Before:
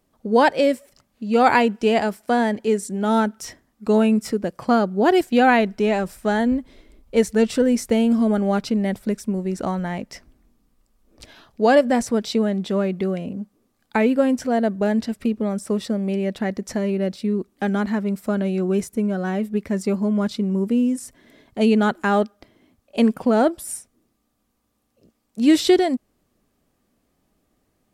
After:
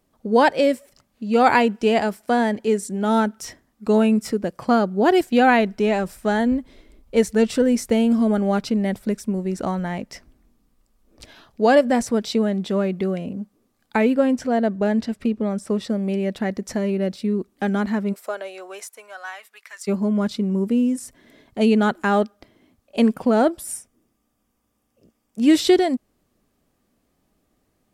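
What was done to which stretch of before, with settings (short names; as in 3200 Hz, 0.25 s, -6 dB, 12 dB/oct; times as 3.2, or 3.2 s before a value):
14.14–15.89 high shelf 9500 Hz -10 dB
18.12–19.87 HPF 430 Hz -> 1300 Hz 24 dB/oct
23.75–25.51 notch 4100 Hz, Q 6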